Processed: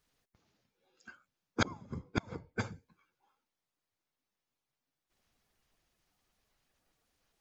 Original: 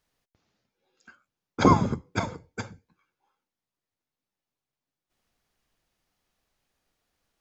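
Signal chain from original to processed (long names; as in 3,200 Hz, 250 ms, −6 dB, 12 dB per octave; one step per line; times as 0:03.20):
spectral magnitudes quantised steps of 15 dB
0:01.69–0:02.61: low-pass that shuts in the quiet parts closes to 2,600 Hz, open at −20 dBFS
gate with flip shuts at −14 dBFS, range −28 dB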